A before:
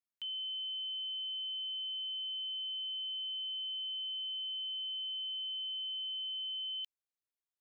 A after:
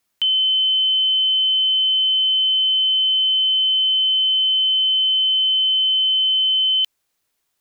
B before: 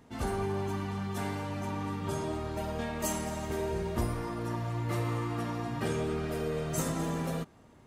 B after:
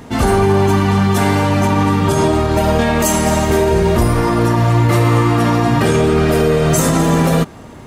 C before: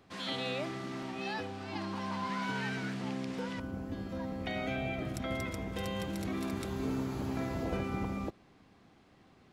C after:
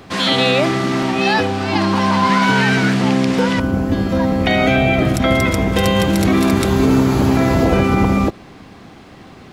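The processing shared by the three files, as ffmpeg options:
-af "alimiter=level_in=25.5dB:limit=-1dB:release=50:level=0:latency=1,volume=-3.5dB"

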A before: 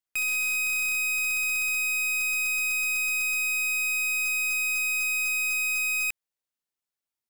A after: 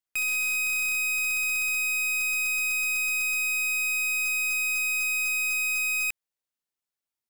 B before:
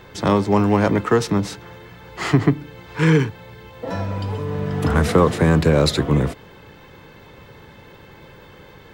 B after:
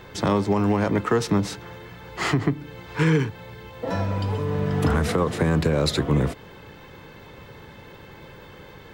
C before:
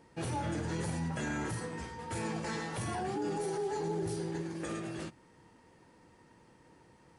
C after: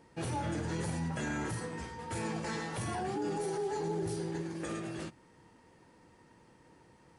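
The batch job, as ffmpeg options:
-af "alimiter=limit=-11dB:level=0:latency=1:release=230"

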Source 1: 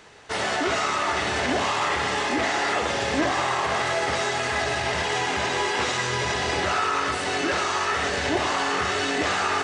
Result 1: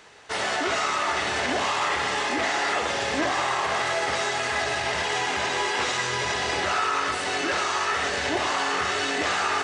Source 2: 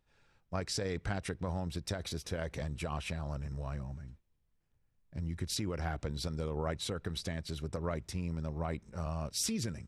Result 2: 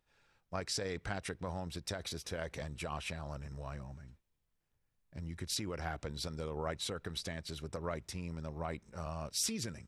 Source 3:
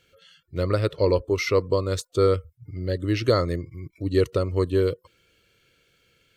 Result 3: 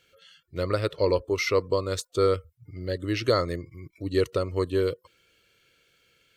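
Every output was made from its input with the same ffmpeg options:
-af "lowshelf=f=350:g=-6.5"

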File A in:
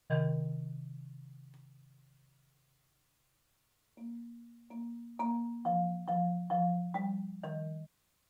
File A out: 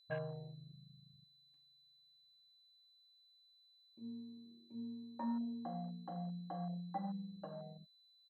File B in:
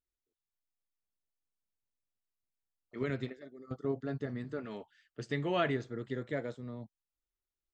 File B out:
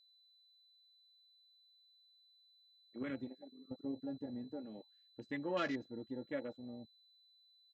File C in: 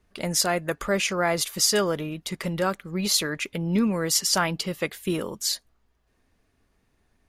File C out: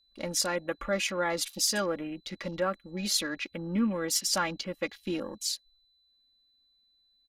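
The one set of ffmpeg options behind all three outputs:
-af "aecho=1:1:3.6:0.69,aeval=exprs='val(0)+0.00708*sin(2*PI*4000*n/s)':c=same,afwtdn=0.0112,volume=-7dB"

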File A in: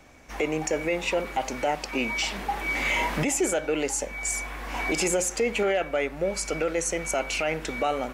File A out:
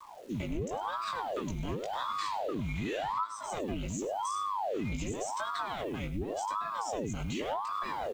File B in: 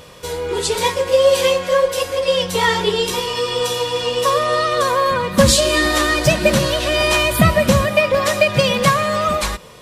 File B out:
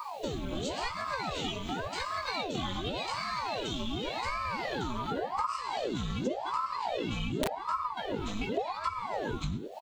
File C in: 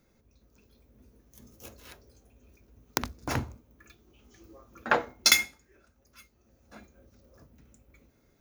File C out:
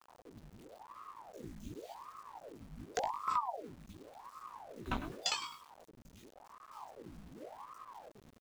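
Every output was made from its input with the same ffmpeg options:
-filter_complex "[0:a]aresample=16000,aresample=44100,superequalizer=8b=0.447:11b=0.316:13b=1.58:14b=0.398,acrossover=split=480|2300[a][b][c];[b]aeval=exprs='sgn(val(0))*max(abs(val(0))-0.0106,0)':c=same[d];[a][d][c]amix=inputs=3:normalize=0,aeval=exprs='0.944*(cos(1*acos(clip(val(0)/0.944,-1,1)))-cos(1*PI/2))+0.015*(cos(8*acos(clip(val(0)/0.944,-1,1)))-cos(8*PI/2))':c=same,asplit=2[e][f];[f]adelay=102,lowpass=f=4.3k:p=1,volume=-12dB,asplit=2[g][h];[h]adelay=102,lowpass=f=4.3k:p=1,volume=0.22,asplit=2[i][j];[j]adelay=102,lowpass=f=4.3k:p=1,volume=0.22[k];[e][g][i][k]amix=inputs=4:normalize=0,flanger=delay=17.5:depth=2.1:speed=2,lowshelf=f=210:t=q:w=3:g=13.5,aeval=exprs='(mod(0.422*val(0)+1,2)-1)/0.422':c=same,acrusher=bits=8:mix=0:aa=0.000001,acompressor=threshold=-26dB:ratio=8,aeval=exprs='val(0)*sin(2*PI*640*n/s+640*0.85/0.89*sin(2*PI*0.89*n/s))':c=same,volume=-2.5dB"

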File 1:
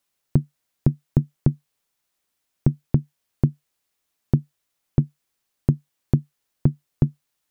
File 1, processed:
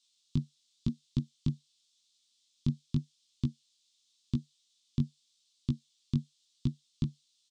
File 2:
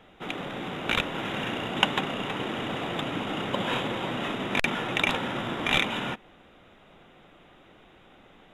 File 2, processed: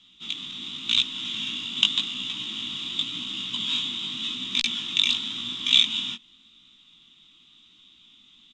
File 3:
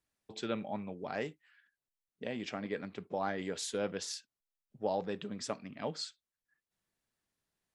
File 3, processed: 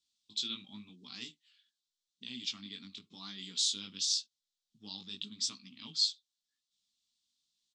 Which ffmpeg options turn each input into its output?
-af "firequalizer=gain_entry='entry(170,0);entry(240,6);entry(550,-29);entry(1100,-7);entry(1600,-16);entry(3500,14);entry(8200,5);entry(13000,-26)':delay=0.05:min_phase=1,flanger=delay=15.5:depth=5.6:speed=0.89,tiltshelf=f=730:g=-6.5,volume=-3.5dB"

